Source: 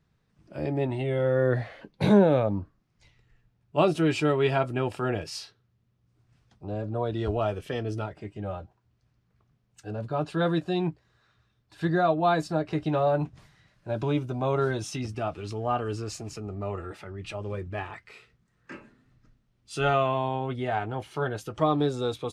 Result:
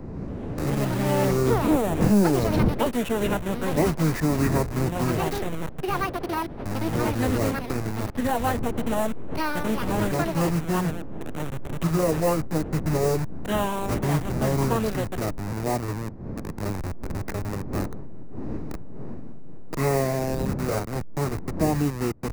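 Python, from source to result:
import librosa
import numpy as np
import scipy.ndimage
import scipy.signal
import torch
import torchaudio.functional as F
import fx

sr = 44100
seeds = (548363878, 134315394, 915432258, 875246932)

y = fx.delta_hold(x, sr, step_db=-27.0)
y = fx.dmg_wind(y, sr, seeds[0], corner_hz=280.0, level_db=-37.0)
y = fx.peak_eq(y, sr, hz=4300.0, db=-13.0, octaves=0.41)
y = fx.formant_shift(y, sr, semitones=-5)
y = fx.echo_pitch(y, sr, ms=282, semitones=7, count=2, db_per_echo=-3.0)
y = fx.band_squash(y, sr, depth_pct=40)
y = y * 10.0 ** (2.0 / 20.0)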